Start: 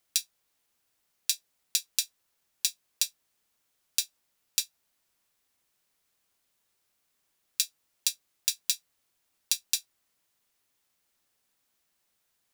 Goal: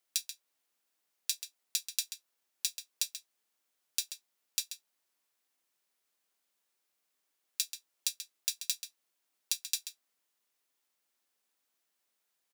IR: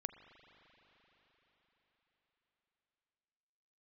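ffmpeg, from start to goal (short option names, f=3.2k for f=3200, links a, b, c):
-filter_complex "[0:a]highpass=240,asplit=2[a][b];[b]adelay=134.1,volume=-9dB,highshelf=f=4k:g=-3.02[c];[a][c]amix=inputs=2:normalize=0,volume=-5.5dB"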